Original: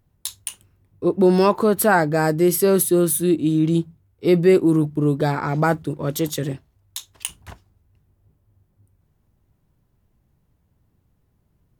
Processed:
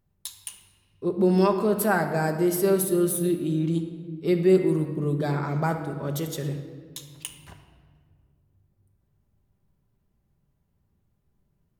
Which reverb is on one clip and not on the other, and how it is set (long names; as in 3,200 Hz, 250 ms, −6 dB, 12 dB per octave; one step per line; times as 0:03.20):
rectangular room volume 2,700 cubic metres, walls mixed, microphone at 1.2 metres
level −8 dB